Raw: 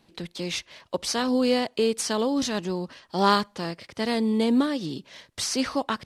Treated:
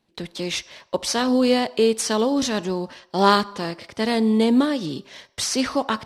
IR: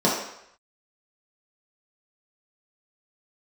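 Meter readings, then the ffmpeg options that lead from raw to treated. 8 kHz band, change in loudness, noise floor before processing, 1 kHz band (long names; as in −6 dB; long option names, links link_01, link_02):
+4.0 dB, +4.0 dB, −63 dBFS, +4.0 dB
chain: -filter_complex "[0:a]agate=range=-13dB:threshold=-49dB:ratio=16:detection=peak,asplit=2[link_01][link_02];[1:a]atrim=start_sample=2205,lowshelf=frequency=410:gain=-11.5[link_03];[link_02][link_03]afir=irnorm=-1:irlink=0,volume=-30.5dB[link_04];[link_01][link_04]amix=inputs=2:normalize=0,volume=3.5dB"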